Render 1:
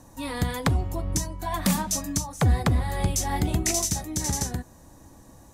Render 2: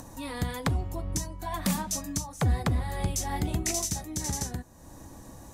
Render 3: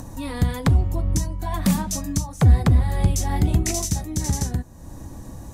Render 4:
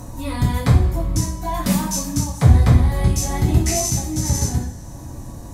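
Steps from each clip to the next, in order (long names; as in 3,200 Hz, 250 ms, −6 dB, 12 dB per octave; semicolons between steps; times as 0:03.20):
upward compression, threshold −32 dBFS; level −4.5 dB
low-shelf EQ 260 Hz +9.5 dB; level +3 dB
coupled-rooms reverb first 0.46 s, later 2.3 s, from −19 dB, DRR −7.5 dB; level −4.5 dB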